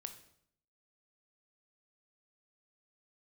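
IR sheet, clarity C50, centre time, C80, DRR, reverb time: 11.0 dB, 10 ms, 14.0 dB, 7.5 dB, 0.65 s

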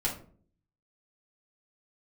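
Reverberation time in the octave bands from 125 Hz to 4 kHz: 0.80, 0.70, 0.55, 0.40, 0.30, 0.25 seconds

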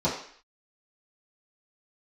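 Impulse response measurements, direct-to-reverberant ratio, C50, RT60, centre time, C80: −11.0 dB, 5.5 dB, 0.55 s, 34 ms, 9.0 dB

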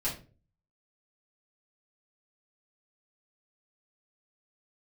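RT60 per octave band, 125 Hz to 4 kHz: 0.60, 0.50, 0.45, 0.30, 0.30, 0.25 seconds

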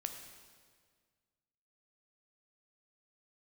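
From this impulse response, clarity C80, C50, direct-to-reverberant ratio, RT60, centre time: 8.0 dB, 6.5 dB, 5.0 dB, 1.8 s, 32 ms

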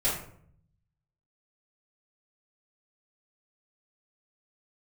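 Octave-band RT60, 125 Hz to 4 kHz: 1.3, 0.90, 0.65, 0.55, 0.45, 0.35 seconds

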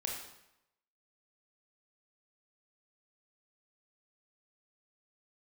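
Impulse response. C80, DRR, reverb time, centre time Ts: 5.5 dB, −1.0 dB, 0.85 s, 46 ms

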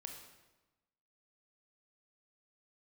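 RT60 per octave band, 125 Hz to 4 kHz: 1.2, 1.2, 1.1, 1.1, 0.95, 0.90 seconds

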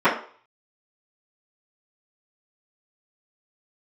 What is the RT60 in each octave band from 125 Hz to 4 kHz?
0.30, 0.35, 0.45, 0.45, 0.40, 0.45 seconds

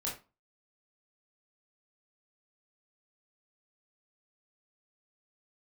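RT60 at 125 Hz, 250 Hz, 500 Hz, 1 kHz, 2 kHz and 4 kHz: 0.35, 0.35, 0.30, 0.30, 0.25, 0.25 seconds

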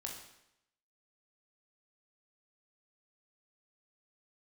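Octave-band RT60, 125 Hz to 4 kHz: 0.80, 0.80, 0.80, 0.80, 0.80, 0.75 seconds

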